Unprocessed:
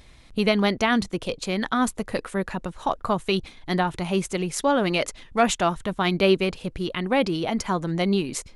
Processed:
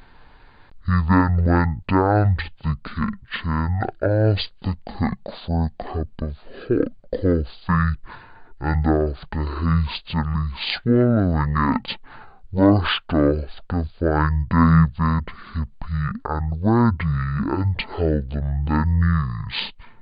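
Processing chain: speed mistake 78 rpm record played at 33 rpm; trim +3.5 dB

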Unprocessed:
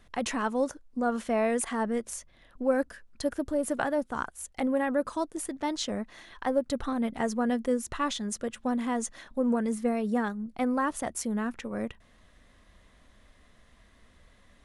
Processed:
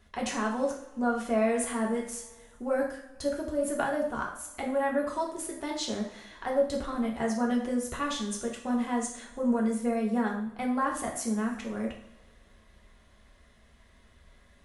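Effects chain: two-slope reverb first 0.51 s, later 2 s, from -20 dB, DRR -1.5 dB; trim -4 dB

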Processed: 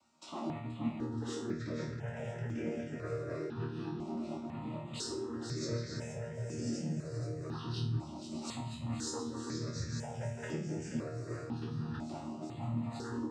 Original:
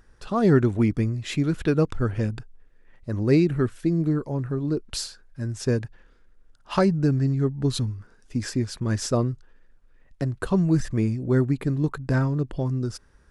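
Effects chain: backward echo that repeats 448 ms, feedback 80%, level -11 dB; spectral replace 6.42–7.22 s, 240–4000 Hz both; compression 6:1, threshold -28 dBFS, peak gain reduction 14.5 dB; hard clipper -29.5 dBFS, distortion -12 dB; flange 0.5 Hz, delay 1 ms, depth 3.7 ms, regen +44%; noise-vocoded speech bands 12; chord resonator D#2 fifth, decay 0.44 s; thinning echo 478 ms, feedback 49%, level -8.5 dB; stepped phaser 2 Hz 460–4000 Hz; trim +15.5 dB

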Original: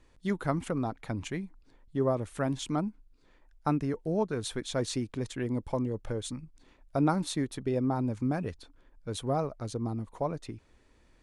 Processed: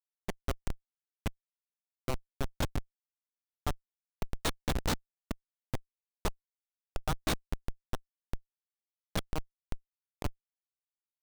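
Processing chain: tilt shelf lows -9.5 dB, about 780 Hz; Schmitt trigger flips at -23 dBFS; trim +7 dB

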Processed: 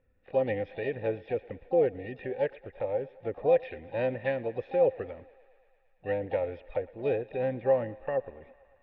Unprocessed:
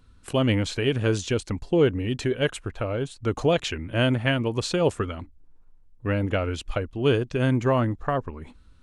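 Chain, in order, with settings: cascade formant filter e; harmony voices +7 st -14 dB; thinning echo 113 ms, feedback 81%, high-pass 390 Hz, level -21 dB; trim +3.5 dB

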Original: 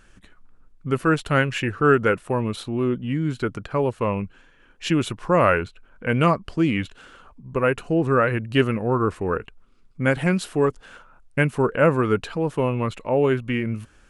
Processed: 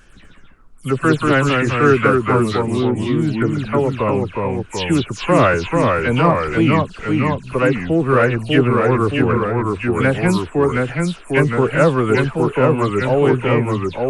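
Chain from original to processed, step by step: delay that grows with frequency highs early, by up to 126 ms; in parallel at -10.5 dB: saturation -23 dBFS, distortion -7 dB; on the sum: ever faster or slower copies 125 ms, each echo -1 st, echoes 2; trim +3 dB

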